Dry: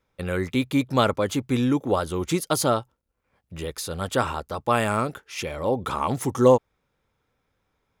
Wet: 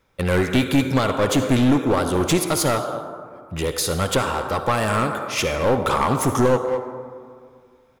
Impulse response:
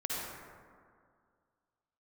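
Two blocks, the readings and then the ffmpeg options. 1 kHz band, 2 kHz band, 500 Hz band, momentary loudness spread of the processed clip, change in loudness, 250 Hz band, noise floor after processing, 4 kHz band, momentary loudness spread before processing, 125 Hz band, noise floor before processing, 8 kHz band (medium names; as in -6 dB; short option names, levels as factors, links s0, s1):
+3.5 dB, +6.0 dB, +2.5 dB, 11 LU, +3.5 dB, +4.5 dB, -55 dBFS, +5.5 dB, 11 LU, +5.0 dB, -75 dBFS, +6.5 dB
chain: -filter_complex "[0:a]asplit=2[s0][s1];[s1]adelay=220,highpass=300,lowpass=3400,asoftclip=type=hard:threshold=0.237,volume=0.141[s2];[s0][s2]amix=inputs=2:normalize=0,alimiter=limit=0.178:level=0:latency=1:release=373,asplit=2[s3][s4];[1:a]atrim=start_sample=2205,lowshelf=f=230:g=-9[s5];[s4][s5]afir=irnorm=-1:irlink=0,volume=0.376[s6];[s3][s6]amix=inputs=2:normalize=0,aeval=exprs='clip(val(0),-1,0.0631)':c=same,volume=2.24"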